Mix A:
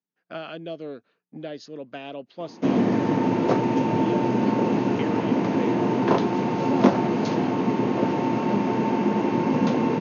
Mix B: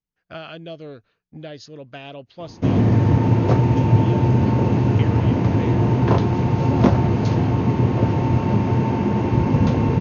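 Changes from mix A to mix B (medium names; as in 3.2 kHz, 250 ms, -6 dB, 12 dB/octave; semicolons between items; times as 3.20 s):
speech: add tilt EQ +1.5 dB/octave; master: remove high-pass 200 Hz 24 dB/octave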